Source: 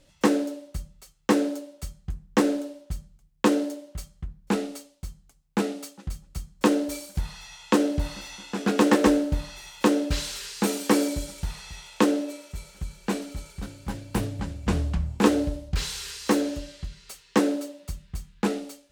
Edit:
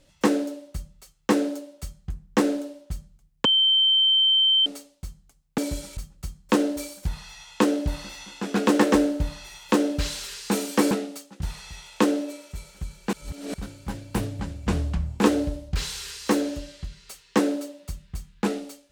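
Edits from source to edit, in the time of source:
3.45–4.66 s: bleep 3.11 kHz -16 dBFS
5.58–6.09 s: swap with 11.03–11.42 s
13.13–13.54 s: reverse

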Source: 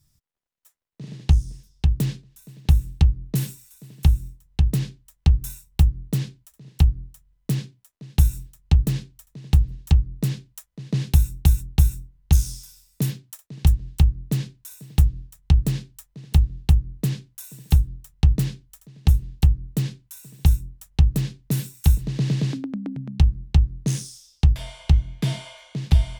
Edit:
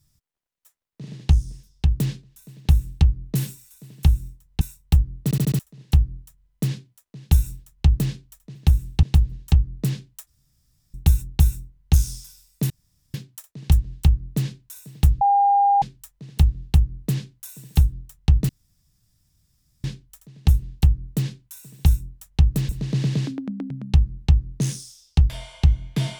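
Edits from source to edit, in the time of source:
2.57–3.05 s: copy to 9.42 s
4.61–5.48 s: delete
6.11 s: stutter in place 0.07 s, 5 plays
10.66–11.33 s: room tone
13.09 s: insert room tone 0.44 s
15.16–15.77 s: bleep 804 Hz -13.5 dBFS
18.44 s: insert room tone 1.35 s
21.29–21.95 s: delete

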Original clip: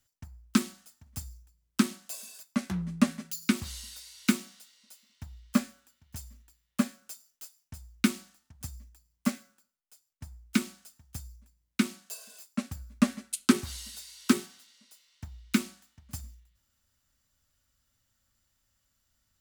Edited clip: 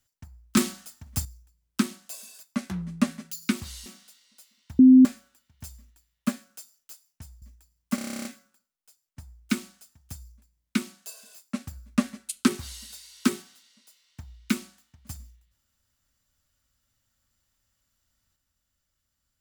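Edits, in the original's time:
0.57–1.25 s: gain +10 dB
3.86–4.38 s: delete
5.31–5.57 s: bleep 258 Hz -9 dBFS
7.94–8.76 s: delete
9.29 s: stutter 0.03 s, 11 plays

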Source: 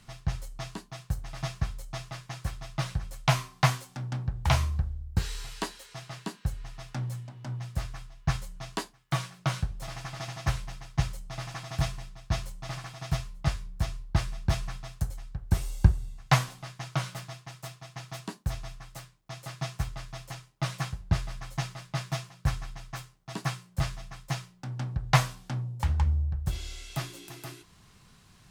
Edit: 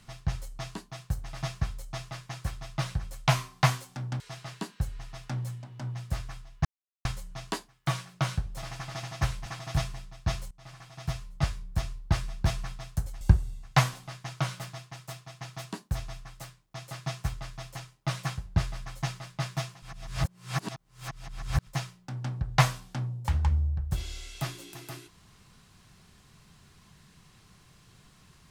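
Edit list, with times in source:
4.20–5.85 s: delete
8.30 s: insert silence 0.40 s
10.71–11.50 s: delete
12.55–13.47 s: fade in, from -19 dB
15.25–15.76 s: delete
22.37–24.22 s: reverse

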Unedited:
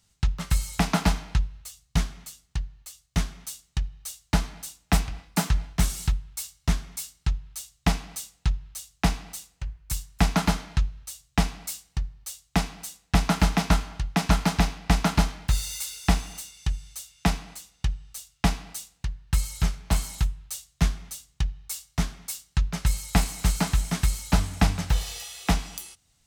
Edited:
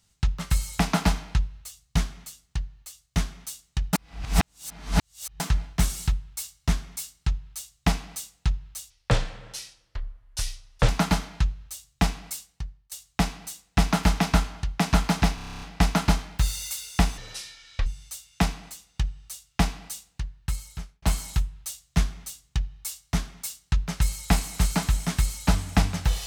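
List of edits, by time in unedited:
3.93–5.40 s: reverse
8.90–10.25 s: speed 68%
11.63–12.28 s: fade out, to -20.5 dB
14.71 s: stutter 0.03 s, 10 plays
16.27–16.71 s: speed 64%
18.92–19.87 s: fade out

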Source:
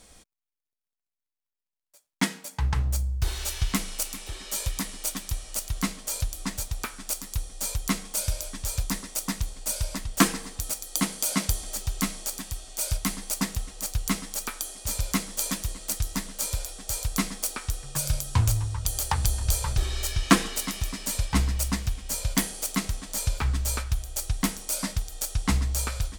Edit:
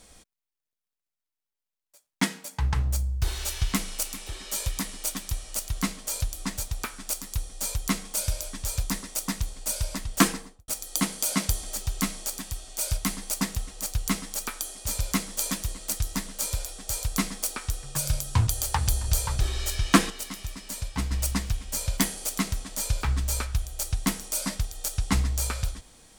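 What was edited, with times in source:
10.27–10.68 s: studio fade out
18.47–18.84 s: delete
20.47–21.48 s: gain -6 dB

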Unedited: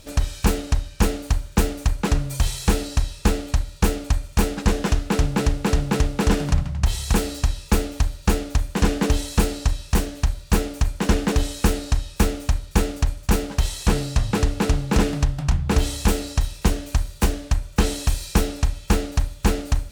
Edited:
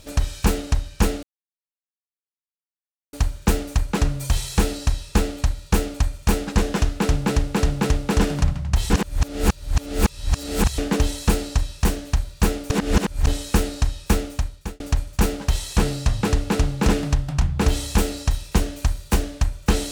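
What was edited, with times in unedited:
1.23 s: insert silence 1.90 s
7.00–8.88 s: reverse
10.80–11.37 s: reverse
12.10–12.90 s: fade out equal-power

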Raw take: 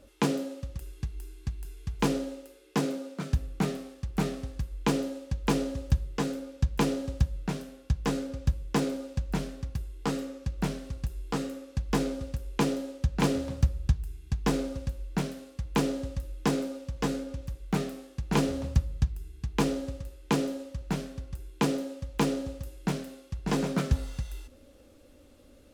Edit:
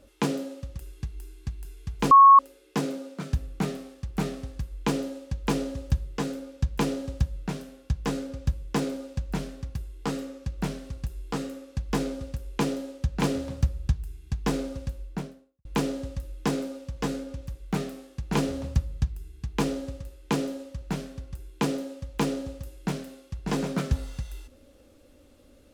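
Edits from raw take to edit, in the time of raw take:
2.11–2.39 s: bleep 1.1 kHz -9 dBFS
14.89–15.65 s: studio fade out

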